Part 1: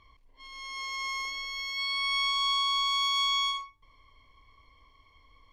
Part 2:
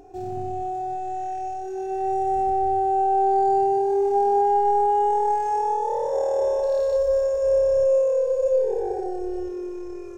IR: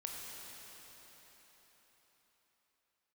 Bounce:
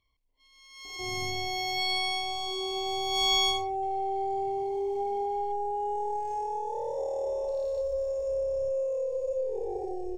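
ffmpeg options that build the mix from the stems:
-filter_complex "[0:a]highshelf=f=5.6k:g=10.5,volume=3.5dB,afade=t=in:st=0.69:d=0.46:silence=0.354813,afade=t=out:st=1.95:d=0.3:silence=0.334965,afade=t=in:st=3.06:d=0.26:silence=0.281838[a];[1:a]lowshelf=f=190:g=5,acompressor=threshold=-24dB:ratio=2.5,adelay=850,volume=-13dB[b];[a][b]amix=inputs=2:normalize=0,dynaudnorm=f=260:g=7:m=7dB,asuperstop=centerf=1400:order=4:qfactor=1.4"

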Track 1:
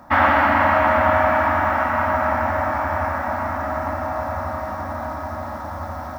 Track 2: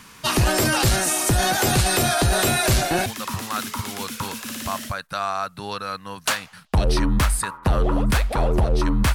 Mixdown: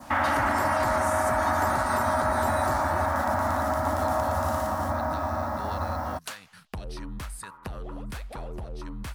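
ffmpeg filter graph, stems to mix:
-filter_complex "[0:a]alimiter=limit=-15.5dB:level=0:latency=1:release=92,volume=0dB[a];[1:a]acompressor=threshold=-32dB:ratio=3,volume=-6dB[b];[a][b]amix=inputs=2:normalize=0,adynamicequalizer=threshold=0.00562:dfrequency=2600:dqfactor=1.5:tfrequency=2600:tqfactor=1.5:attack=5:release=100:ratio=0.375:range=3.5:mode=cutabove:tftype=bell"

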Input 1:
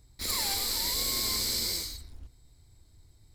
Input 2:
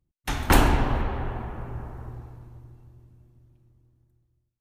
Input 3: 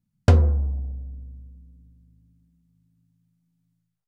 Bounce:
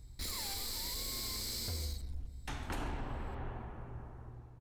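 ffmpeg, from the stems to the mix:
-filter_complex "[0:a]lowshelf=f=180:g=8,acompressor=threshold=-34dB:ratio=6,asoftclip=type=tanh:threshold=-33dB,volume=-0.5dB[a];[1:a]lowpass=10k,acontrast=88,adelay=2200,volume=-18.5dB[b];[2:a]alimiter=limit=-15dB:level=0:latency=1,adelay=1400,volume=-16.5dB[c];[a][b][c]amix=inputs=3:normalize=0,alimiter=level_in=6.5dB:limit=-24dB:level=0:latency=1:release=322,volume=-6.5dB"

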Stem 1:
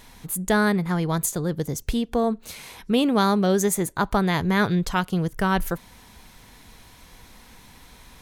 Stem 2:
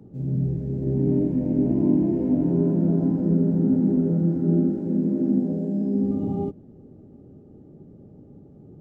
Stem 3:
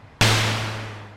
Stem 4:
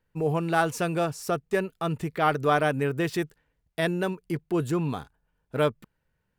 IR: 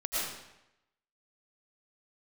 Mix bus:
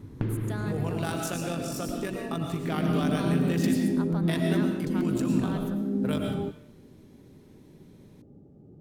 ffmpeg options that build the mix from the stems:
-filter_complex "[0:a]volume=-19.5dB,asplit=2[a][b];[b]volume=-13dB[c];[1:a]volume=-5dB,afade=t=in:st=2.61:d=0.3:silence=0.266073[d];[2:a]lowpass=1.3k,lowshelf=f=480:t=q:w=3:g=11.5,acompressor=threshold=-22dB:ratio=3,volume=-9dB[e];[3:a]acrossover=split=160|3000[f][g][h];[g]acompressor=threshold=-34dB:ratio=4[i];[f][i][h]amix=inputs=3:normalize=0,tremolo=f=49:d=0.571,adelay=500,volume=-1.5dB,asplit=2[j][k];[k]volume=-4.5dB[l];[4:a]atrim=start_sample=2205[m];[c][l]amix=inputs=2:normalize=0[n];[n][m]afir=irnorm=-1:irlink=0[o];[a][d][e][j][o]amix=inputs=5:normalize=0"

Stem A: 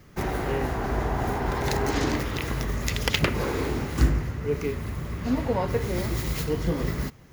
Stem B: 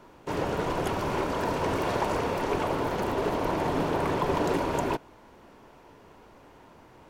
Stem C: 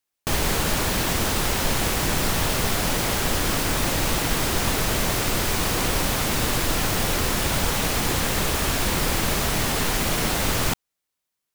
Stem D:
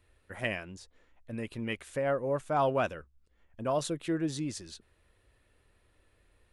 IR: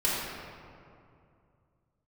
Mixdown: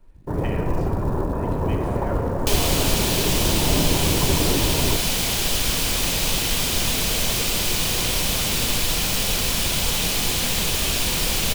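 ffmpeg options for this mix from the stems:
-filter_complex "[0:a]adelay=1650,volume=-15dB[a];[1:a]aemphasis=mode=reproduction:type=riaa,afwtdn=0.0282,acrusher=bits=8:mode=log:mix=0:aa=0.000001,volume=-1dB[b];[2:a]highshelf=f=2.2k:t=q:w=1.5:g=7,adelay=2200,volume=-4dB,asplit=2[c][d];[d]volume=-16.5dB[e];[3:a]volume=-8dB,asplit=2[f][g];[g]volume=-8.5dB[h];[4:a]atrim=start_sample=2205[i];[e][h]amix=inputs=2:normalize=0[j];[j][i]afir=irnorm=-1:irlink=0[k];[a][b][c][f][k]amix=inputs=5:normalize=0,acrossover=split=350[l][m];[m]acompressor=threshold=-19dB:ratio=6[n];[l][n]amix=inputs=2:normalize=0"

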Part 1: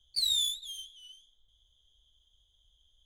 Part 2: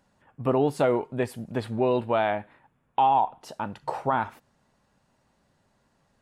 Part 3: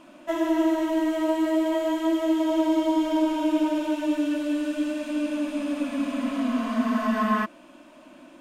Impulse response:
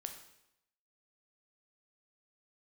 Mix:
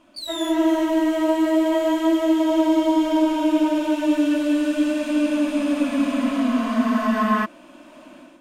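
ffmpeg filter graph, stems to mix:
-filter_complex "[0:a]volume=-4.5dB[a];[2:a]dynaudnorm=f=190:g=5:m=13dB,volume=-6dB[b];[a][b]amix=inputs=2:normalize=0"

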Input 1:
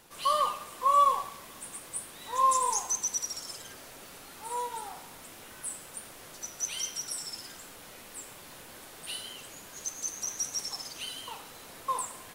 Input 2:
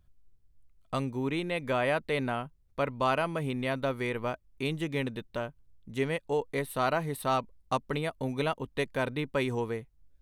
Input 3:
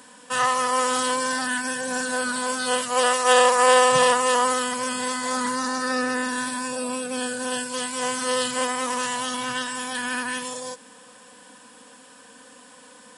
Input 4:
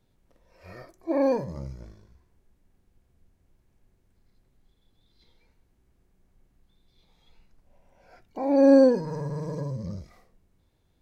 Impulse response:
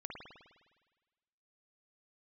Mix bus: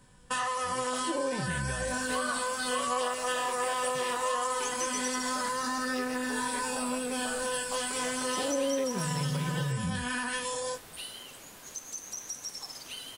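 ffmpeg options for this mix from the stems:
-filter_complex "[0:a]acompressor=threshold=-34dB:ratio=3,adelay=1900,volume=-2dB,asplit=3[a][b][c];[a]atrim=end=9.72,asetpts=PTS-STARTPTS,afade=t=out:st=9.716:d=0.004:c=hsin[d];[b]atrim=start=9.72:end=10.74,asetpts=PTS-STARTPTS,volume=0[e];[c]atrim=start=10.74,asetpts=PTS-STARTPTS,afade=t=in:d=0.004:c=hsin[f];[d][e][f]concat=n=3:v=0:a=1[g];[1:a]deesser=0.95,highpass=500,acompressor=threshold=-43dB:ratio=4,volume=0dB[h];[2:a]agate=range=-14dB:threshold=-38dB:ratio=16:detection=peak,flanger=delay=16:depth=5.9:speed=0.33,volume=2.5dB[i];[3:a]equalizer=f=97:w=0.44:g=14,aecho=1:1:5.4:0.48,volume=-1.5dB[j];[i][j]amix=inputs=2:normalize=0,acompressor=threshold=-29dB:ratio=6,volume=0dB[k];[g][h][k]amix=inputs=3:normalize=0"

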